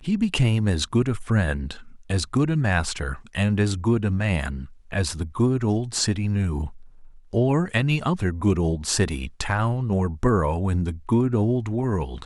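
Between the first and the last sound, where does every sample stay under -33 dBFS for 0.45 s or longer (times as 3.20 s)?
6.68–7.33 s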